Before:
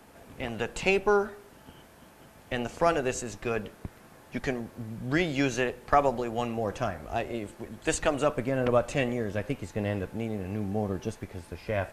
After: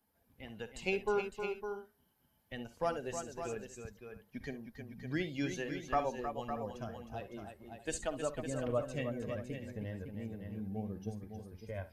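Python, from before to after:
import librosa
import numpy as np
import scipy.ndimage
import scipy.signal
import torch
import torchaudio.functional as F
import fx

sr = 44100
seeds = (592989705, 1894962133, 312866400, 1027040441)

y = fx.bin_expand(x, sr, power=1.5)
y = fx.echo_multitap(y, sr, ms=(52, 66, 313, 558, 633), db=(-15.5, -16.5, -8.0, -8.5, -18.5))
y = fx.dynamic_eq(y, sr, hz=1400.0, q=0.82, threshold_db=-41.0, ratio=4.0, max_db=-3)
y = y * 10.0 ** (-7.5 / 20.0)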